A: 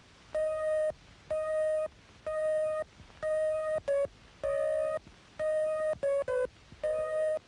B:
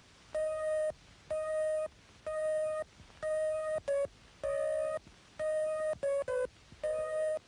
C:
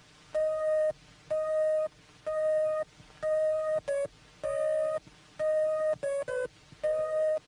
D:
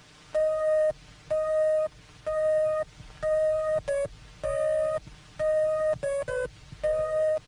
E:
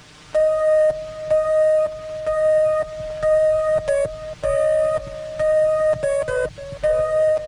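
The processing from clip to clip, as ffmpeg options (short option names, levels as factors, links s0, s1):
-af "highshelf=f=6400:g=7.5,volume=0.708"
-af "aecho=1:1:6.6:0.76,volume=1.12"
-af "asubboost=boost=3.5:cutoff=140,volume=1.58"
-filter_complex "[0:a]asplit=2[s0][s1];[s1]adelay=548.1,volume=0.224,highshelf=f=4000:g=-12.3[s2];[s0][s2]amix=inputs=2:normalize=0,volume=2.51"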